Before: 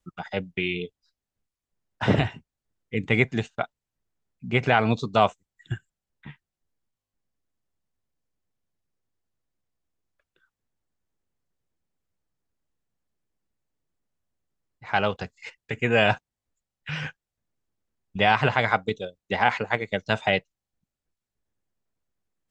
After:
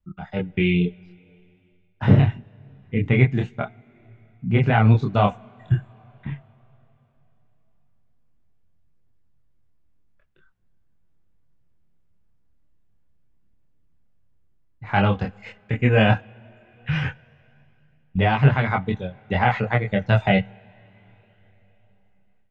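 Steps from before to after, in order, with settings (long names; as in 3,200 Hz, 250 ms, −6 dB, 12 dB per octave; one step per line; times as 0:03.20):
bass and treble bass +12 dB, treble −12 dB
coupled-rooms reverb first 0.29 s, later 3.8 s, from −18 dB, DRR 19.5 dB
multi-voice chorus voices 2, 0.11 Hz, delay 26 ms, depth 4.3 ms
automatic gain control gain up to 10 dB
level −2 dB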